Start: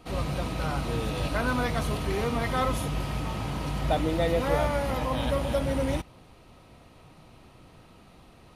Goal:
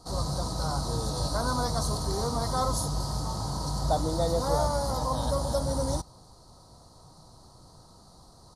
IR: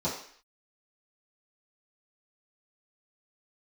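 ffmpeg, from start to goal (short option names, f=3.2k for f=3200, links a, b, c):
-af "firequalizer=gain_entry='entry(140,0);entry(250,-5);entry(980,3);entry(2500,-28);entry(4300,10);entry(9200,8);entry(14000,-3)':delay=0.05:min_phase=1"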